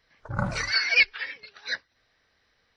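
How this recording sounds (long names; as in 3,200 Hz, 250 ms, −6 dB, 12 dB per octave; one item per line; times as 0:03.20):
background noise floor −70 dBFS
spectral slope −3.0 dB per octave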